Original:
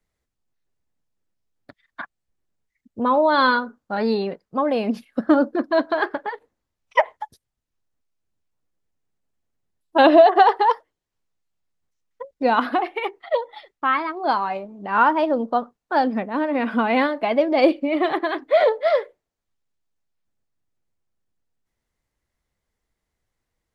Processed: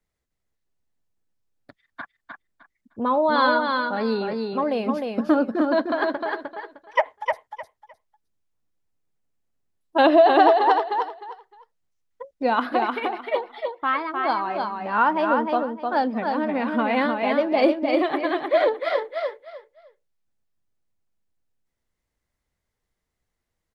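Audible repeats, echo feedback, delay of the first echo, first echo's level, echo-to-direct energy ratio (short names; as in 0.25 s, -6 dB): 3, 22%, 0.306 s, -4.0 dB, -4.0 dB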